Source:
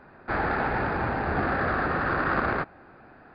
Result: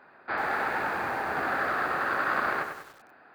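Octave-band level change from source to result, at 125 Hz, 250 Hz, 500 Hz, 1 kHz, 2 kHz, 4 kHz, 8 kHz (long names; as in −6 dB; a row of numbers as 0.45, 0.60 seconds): −15.5 dB, −9.0 dB, −4.5 dB, −1.0 dB, 0.0 dB, +1.5 dB, can't be measured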